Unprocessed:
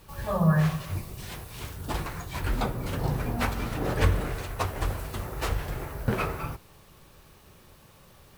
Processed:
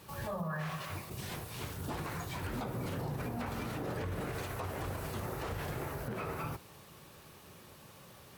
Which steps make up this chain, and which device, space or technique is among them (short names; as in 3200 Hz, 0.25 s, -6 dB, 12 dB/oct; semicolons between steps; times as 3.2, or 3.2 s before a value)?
0.43–1.1 tilt shelf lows -9 dB, about 650 Hz; podcast mastering chain (HPF 100 Hz 12 dB/oct; de-esser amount 95%; compressor 2.5:1, threshold -32 dBFS, peak gain reduction 7.5 dB; limiter -30 dBFS, peak gain reduction 9 dB; gain +1 dB; MP3 96 kbps 44100 Hz)